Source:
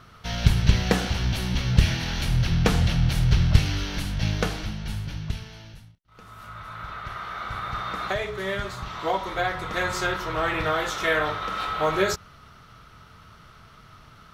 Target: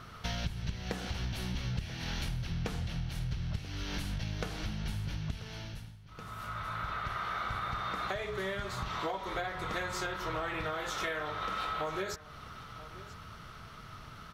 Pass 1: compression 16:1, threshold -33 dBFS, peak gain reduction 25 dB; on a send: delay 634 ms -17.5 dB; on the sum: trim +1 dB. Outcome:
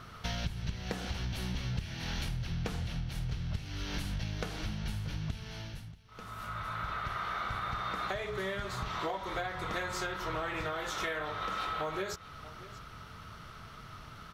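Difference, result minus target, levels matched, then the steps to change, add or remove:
echo 352 ms early
change: delay 986 ms -17.5 dB

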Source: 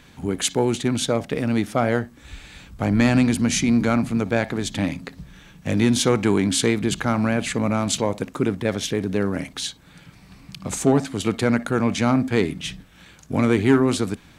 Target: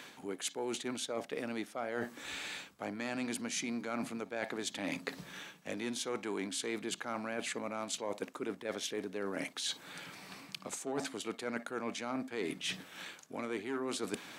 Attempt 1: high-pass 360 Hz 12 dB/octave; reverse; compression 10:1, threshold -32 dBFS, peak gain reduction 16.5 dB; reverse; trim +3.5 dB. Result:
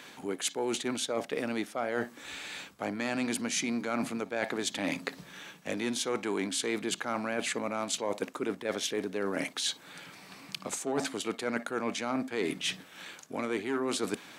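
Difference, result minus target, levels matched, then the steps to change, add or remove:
compression: peak gain reduction -6 dB
change: compression 10:1, threshold -38.5 dBFS, peak gain reduction 22.5 dB

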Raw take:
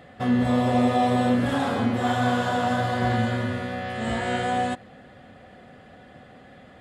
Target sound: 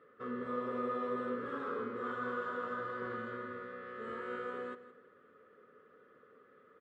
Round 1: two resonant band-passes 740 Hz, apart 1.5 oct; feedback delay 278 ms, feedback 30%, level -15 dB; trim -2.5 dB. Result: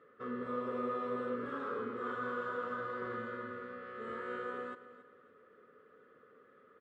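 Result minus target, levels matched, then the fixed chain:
echo 112 ms late
two resonant band-passes 740 Hz, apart 1.5 oct; feedback delay 166 ms, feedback 30%, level -15 dB; trim -2.5 dB

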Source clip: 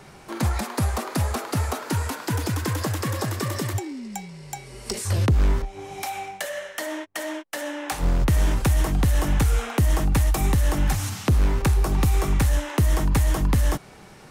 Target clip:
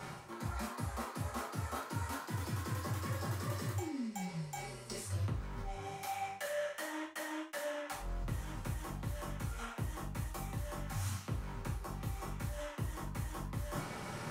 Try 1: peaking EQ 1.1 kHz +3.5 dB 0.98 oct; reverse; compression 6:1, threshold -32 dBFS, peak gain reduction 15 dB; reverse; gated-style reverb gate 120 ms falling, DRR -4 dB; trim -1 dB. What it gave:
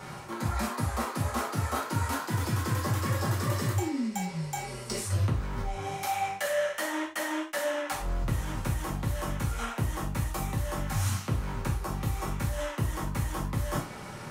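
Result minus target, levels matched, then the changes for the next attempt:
compression: peak gain reduction -9.5 dB
change: compression 6:1, threshold -43.5 dBFS, peak gain reduction 24.5 dB

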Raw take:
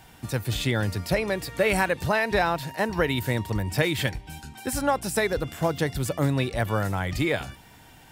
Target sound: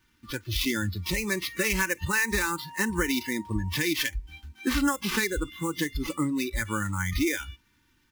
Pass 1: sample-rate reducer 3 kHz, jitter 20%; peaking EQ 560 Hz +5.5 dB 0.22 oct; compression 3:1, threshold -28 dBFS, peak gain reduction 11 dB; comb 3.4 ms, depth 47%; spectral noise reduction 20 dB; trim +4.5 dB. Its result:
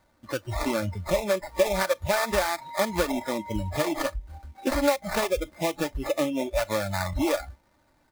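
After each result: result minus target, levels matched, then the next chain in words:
500 Hz band +9.0 dB; sample-rate reducer: distortion +6 dB
sample-rate reducer 3 kHz, jitter 20%; Butterworth band-stop 660 Hz, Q 0.98; peaking EQ 560 Hz +5.5 dB 0.22 oct; compression 3:1, threshold -28 dBFS, peak gain reduction 7.5 dB; comb 3.4 ms, depth 47%; spectral noise reduction 20 dB; trim +4.5 dB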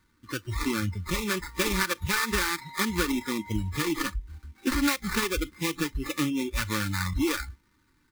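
sample-rate reducer: distortion +6 dB
sample-rate reducer 8.5 kHz, jitter 20%; Butterworth band-stop 660 Hz, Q 0.98; peaking EQ 560 Hz +5.5 dB 0.22 oct; compression 3:1, threshold -28 dBFS, peak gain reduction 7.5 dB; comb 3.4 ms, depth 47%; spectral noise reduction 20 dB; trim +4.5 dB

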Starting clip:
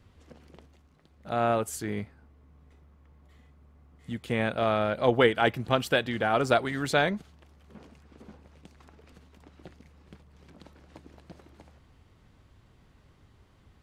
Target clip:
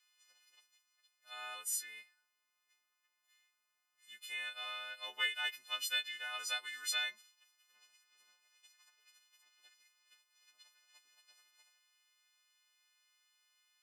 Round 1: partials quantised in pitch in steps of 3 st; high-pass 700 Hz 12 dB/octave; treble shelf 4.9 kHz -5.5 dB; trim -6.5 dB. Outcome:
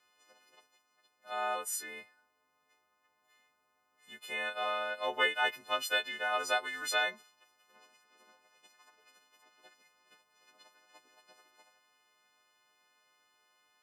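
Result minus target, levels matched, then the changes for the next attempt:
500 Hz band +15.5 dB
change: high-pass 2.5 kHz 12 dB/octave

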